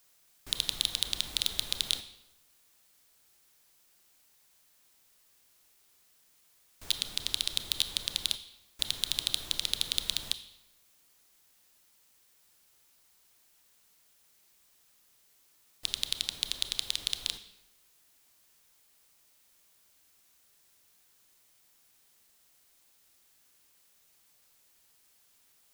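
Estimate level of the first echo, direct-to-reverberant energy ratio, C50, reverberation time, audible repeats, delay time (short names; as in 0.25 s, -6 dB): none, 11.0 dB, 12.5 dB, 1.0 s, none, none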